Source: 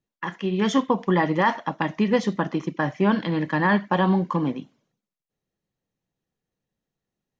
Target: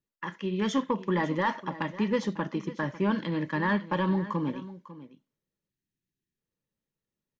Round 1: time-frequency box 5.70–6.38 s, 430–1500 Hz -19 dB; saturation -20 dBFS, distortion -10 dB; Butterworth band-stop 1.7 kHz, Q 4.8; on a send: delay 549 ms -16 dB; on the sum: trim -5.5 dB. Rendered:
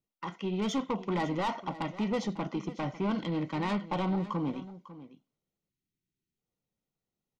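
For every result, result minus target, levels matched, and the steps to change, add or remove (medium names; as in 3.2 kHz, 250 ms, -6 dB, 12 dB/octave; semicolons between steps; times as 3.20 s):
saturation: distortion +13 dB; 2 kHz band -5.0 dB
change: saturation -9.5 dBFS, distortion -23 dB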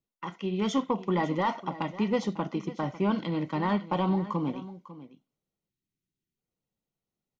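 2 kHz band -6.0 dB
change: Butterworth band-stop 730 Hz, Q 4.8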